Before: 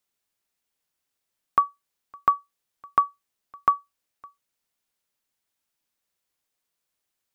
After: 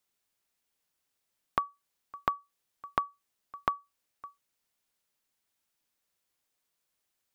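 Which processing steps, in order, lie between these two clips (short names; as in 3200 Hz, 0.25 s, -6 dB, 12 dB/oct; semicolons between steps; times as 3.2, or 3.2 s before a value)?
compressor 12:1, threshold -26 dBFS, peak gain reduction 12 dB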